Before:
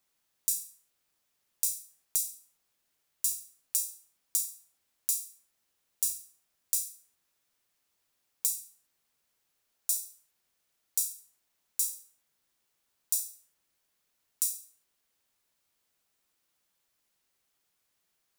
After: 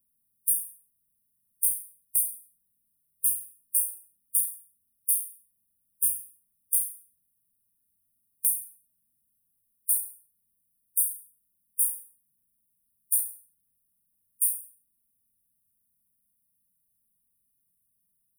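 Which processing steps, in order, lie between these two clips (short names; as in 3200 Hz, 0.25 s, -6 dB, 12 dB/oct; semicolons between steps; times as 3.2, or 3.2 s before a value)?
harmonic-percussive split harmonic +9 dB; brick-wall FIR band-stop 270–8800 Hz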